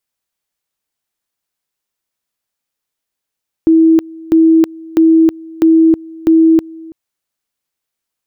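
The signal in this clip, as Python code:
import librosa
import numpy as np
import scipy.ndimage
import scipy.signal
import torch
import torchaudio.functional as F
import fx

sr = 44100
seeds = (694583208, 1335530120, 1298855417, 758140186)

y = fx.two_level_tone(sr, hz=324.0, level_db=-4.5, drop_db=23.5, high_s=0.32, low_s=0.33, rounds=5)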